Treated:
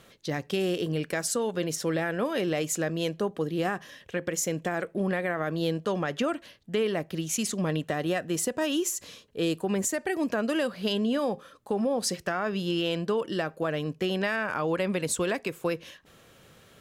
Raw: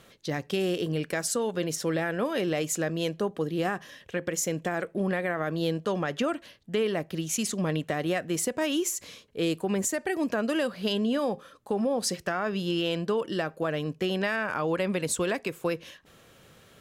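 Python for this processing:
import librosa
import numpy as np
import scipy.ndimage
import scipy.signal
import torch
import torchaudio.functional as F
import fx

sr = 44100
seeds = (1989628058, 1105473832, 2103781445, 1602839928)

y = fx.notch(x, sr, hz=2200.0, q=11.0, at=(7.69, 9.73))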